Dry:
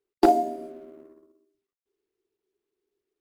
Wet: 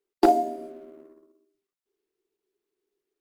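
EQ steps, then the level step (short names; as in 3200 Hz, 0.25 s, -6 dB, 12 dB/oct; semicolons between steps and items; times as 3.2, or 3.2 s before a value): bell 77 Hz -10.5 dB 1.2 oct; 0.0 dB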